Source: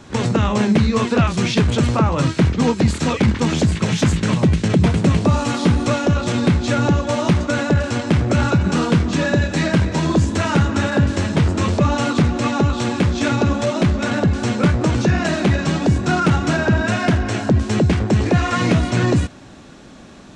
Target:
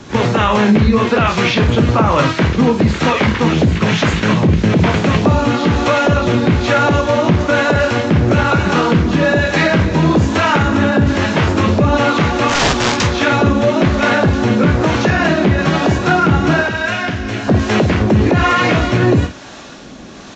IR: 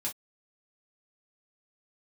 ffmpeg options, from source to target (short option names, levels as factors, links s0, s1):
-filter_complex "[0:a]acrossover=split=3300[s0][s1];[s1]acompressor=threshold=0.00562:ratio=4:attack=1:release=60[s2];[s0][s2]amix=inputs=2:normalize=0,lowshelf=f=290:g=-7.5,asettb=1/sr,asplit=3[s3][s4][s5];[s3]atrim=end=16.614[s6];[s4]atrim=start=16.61:end=17.48,asetpts=PTS-STARTPTS,afade=t=in:d=0.004:c=qsin,afade=t=out:st=0.866:d=0.004:c=qsin,acrossover=split=86|1700[s7][s8][s9];[s7]acompressor=threshold=0.01:ratio=4[s10];[s8]acompressor=threshold=0.0251:ratio=4[s11];[s9]acompressor=threshold=0.0251:ratio=4[s12];[s10][s11][s12]amix=inputs=3:normalize=0[s13];[s5]atrim=start=17.476[s14];[s6][s13]acrossfade=d=0.004:c1=hsin:c2=qsin[s15];[s15][s14]acrossfade=d=0.004:c1=qsin:c2=hsin,acrossover=split=450[s16][s17];[s16]aeval=exprs='val(0)*(1-0.5/2+0.5/2*cos(2*PI*1.1*n/s))':c=same[s18];[s17]aeval=exprs='val(0)*(1-0.5/2-0.5/2*cos(2*PI*1.1*n/s))':c=same[s19];[s18][s19]amix=inputs=2:normalize=0,asplit=3[s20][s21][s22];[s20]afade=t=out:st=12.48:d=0.02[s23];[s21]aeval=exprs='(mod(10.6*val(0)+1,2)-1)/10.6':c=same,afade=t=in:st=12.48:d=0.02,afade=t=out:st=13.02:d=0.02[s24];[s22]afade=t=in:st=13.02:d=0.02[s25];[s23][s24][s25]amix=inputs=3:normalize=0,aresample=16000,aresample=44100,aecho=1:1:19|52:0.211|0.266,alimiter=level_in=5.31:limit=0.891:release=50:level=0:latency=1,volume=0.75" -ar 44100 -c:a libvorbis -b:a 32k